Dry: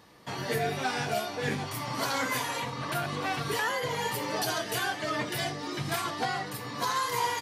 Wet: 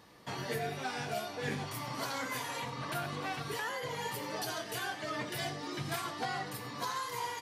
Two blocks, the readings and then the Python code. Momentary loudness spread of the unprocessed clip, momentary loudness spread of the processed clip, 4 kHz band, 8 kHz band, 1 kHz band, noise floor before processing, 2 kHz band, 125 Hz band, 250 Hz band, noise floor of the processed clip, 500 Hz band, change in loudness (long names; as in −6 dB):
5 LU, 2 LU, −6.5 dB, −6.5 dB, −6.5 dB, −39 dBFS, −6.5 dB, −5.5 dB, −6.0 dB, −44 dBFS, −6.5 dB, −6.5 dB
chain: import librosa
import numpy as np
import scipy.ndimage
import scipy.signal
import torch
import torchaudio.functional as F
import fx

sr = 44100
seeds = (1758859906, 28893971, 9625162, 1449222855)

y = fx.rider(x, sr, range_db=5, speed_s=0.5)
y = y + 10.0 ** (-16.0 / 20.0) * np.pad(y, (int(95 * sr / 1000.0), 0))[:len(y)]
y = y * librosa.db_to_amplitude(-6.5)